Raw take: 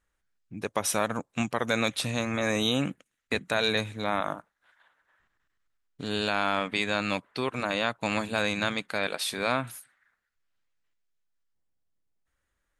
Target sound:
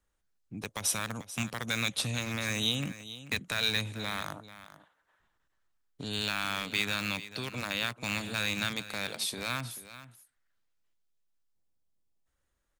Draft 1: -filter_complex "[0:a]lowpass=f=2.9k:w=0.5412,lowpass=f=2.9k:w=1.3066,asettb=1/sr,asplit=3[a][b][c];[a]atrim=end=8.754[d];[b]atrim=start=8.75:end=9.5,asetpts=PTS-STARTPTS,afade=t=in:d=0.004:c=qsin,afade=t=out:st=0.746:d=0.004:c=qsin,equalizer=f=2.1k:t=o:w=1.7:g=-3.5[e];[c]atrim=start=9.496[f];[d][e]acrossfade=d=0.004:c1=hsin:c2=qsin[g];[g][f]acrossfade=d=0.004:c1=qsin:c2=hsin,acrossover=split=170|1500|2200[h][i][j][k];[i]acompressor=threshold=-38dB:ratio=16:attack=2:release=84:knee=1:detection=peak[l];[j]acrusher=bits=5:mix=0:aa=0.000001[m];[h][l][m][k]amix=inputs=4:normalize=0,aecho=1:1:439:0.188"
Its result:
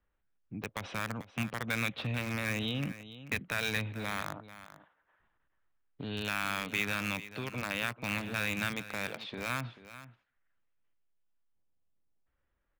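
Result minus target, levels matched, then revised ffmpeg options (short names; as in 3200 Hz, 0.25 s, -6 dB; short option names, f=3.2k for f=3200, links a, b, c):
4000 Hz band -5.0 dB
-filter_complex "[0:a]asettb=1/sr,asplit=3[a][b][c];[a]atrim=end=8.754[d];[b]atrim=start=8.75:end=9.5,asetpts=PTS-STARTPTS,afade=t=in:d=0.004:c=qsin,afade=t=out:st=0.746:d=0.004:c=qsin,equalizer=f=2.1k:t=o:w=1.7:g=-3.5[e];[c]atrim=start=9.496[f];[d][e]acrossfade=d=0.004:c1=hsin:c2=qsin[g];[g][f]acrossfade=d=0.004:c1=qsin:c2=hsin,acrossover=split=170|1500|2200[h][i][j][k];[i]acompressor=threshold=-38dB:ratio=16:attack=2:release=84:knee=1:detection=peak[l];[j]acrusher=bits=5:mix=0:aa=0.000001[m];[h][l][m][k]amix=inputs=4:normalize=0,aecho=1:1:439:0.188"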